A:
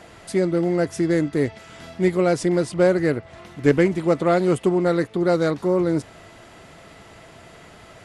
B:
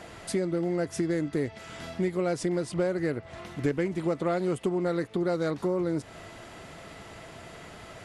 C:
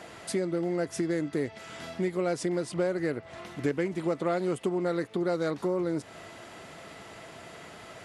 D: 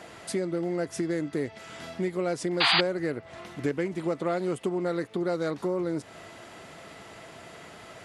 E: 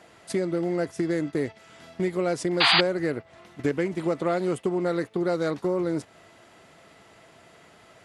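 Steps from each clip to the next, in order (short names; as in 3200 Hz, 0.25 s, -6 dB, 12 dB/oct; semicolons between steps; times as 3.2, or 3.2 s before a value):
compressor 4:1, threshold -26 dBFS, peak gain reduction 13 dB
HPF 170 Hz 6 dB/oct
painted sound noise, 2.6–2.81, 660–4900 Hz -22 dBFS
gate -35 dBFS, range -10 dB; gain +3 dB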